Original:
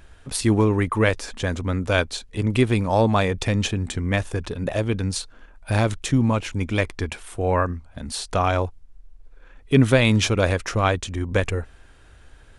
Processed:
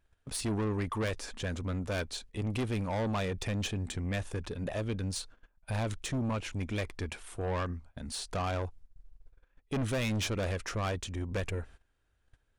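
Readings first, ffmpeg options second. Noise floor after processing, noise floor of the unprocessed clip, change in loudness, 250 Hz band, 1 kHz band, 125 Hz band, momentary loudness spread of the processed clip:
-74 dBFS, -49 dBFS, -12.5 dB, -12.5 dB, -13.0 dB, -11.5 dB, 7 LU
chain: -af "agate=range=-18dB:threshold=-41dB:ratio=16:detection=peak,asoftclip=type=tanh:threshold=-20.5dB,volume=-7.5dB"

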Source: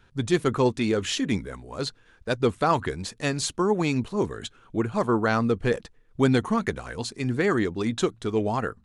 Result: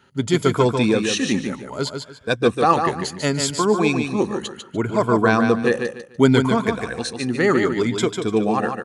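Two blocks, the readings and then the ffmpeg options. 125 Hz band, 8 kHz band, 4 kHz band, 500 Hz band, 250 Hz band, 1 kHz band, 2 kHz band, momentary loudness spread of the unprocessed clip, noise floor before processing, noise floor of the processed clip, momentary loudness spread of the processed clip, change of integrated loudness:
+4.0 dB, +6.5 dB, +6.0 dB, +6.0 dB, +5.5 dB, +6.5 dB, +6.5 dB, 10 LU, -59 dBFS, -44 dBFS, 10 LU, +5.5 dB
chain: -af "afftfilt=real='re*pow(10,10/40*sin(2*PI*(1.7*log(max(b,1)*sr/1024/100)/log(2)-(0.67)*(pts-256)/sr)))':imag='im*pow(10,10/40*sin(2*PI*(1.7*log(max(b,1)*sr/1024/100)/log(2)-(0.67)*(pts-256)/sr)))':win_size=1024:overlap=0.75,highpass=120,aecho=1:1:147|294|441:0.501|0.13|0.0339,volume=4dB"

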